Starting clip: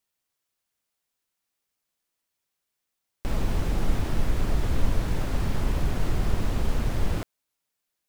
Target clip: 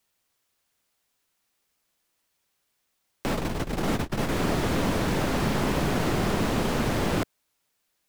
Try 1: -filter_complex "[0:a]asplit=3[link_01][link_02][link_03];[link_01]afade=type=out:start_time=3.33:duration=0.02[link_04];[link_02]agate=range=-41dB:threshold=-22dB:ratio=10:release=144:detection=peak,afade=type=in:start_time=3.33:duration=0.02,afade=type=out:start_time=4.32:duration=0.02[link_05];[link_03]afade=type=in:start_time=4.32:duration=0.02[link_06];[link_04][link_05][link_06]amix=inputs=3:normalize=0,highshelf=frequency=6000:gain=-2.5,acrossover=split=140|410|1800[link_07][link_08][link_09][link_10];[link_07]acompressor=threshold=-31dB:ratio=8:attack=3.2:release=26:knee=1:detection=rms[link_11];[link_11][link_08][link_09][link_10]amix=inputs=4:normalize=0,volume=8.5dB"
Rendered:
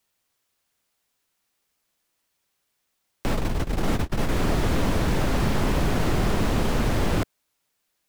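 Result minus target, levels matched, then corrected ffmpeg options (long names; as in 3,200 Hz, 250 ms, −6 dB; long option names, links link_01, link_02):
downward compressor: peak gain reduction −9 dB
-filter_complex "[0:a]asplit=3[link_01][link_02][link_03];[link_01]afade=type=out:start_time=3.33:duration=0.02[link_04];[link_02]agate=range=-41dB:threshold=-22dB:ratio=10:release=144:detection=peak,afade=type=in:start_time=3.33:duration=0.02,afade=type=out:start_time=4.32:duration=0.02[link_05];[link_03]afade=type=in:start_time=4.32:duration=0.02[link_06];[link_04][link_05][link_06]amix=inputs=3:normalize=0,highshelf=frequency=6000:gain=-2.5,acrossover=split=140|410|1800[link_07][link_08][link_09][link_10];[link_07]acompressor=threshold=-41.5dB:ratio=8:attack=3.2:release=26:knee=1:detection=rms[link_11];[link_11][link_08][link_09][link_10]amix=inputs=4:normalize=0,volume=8.5dB"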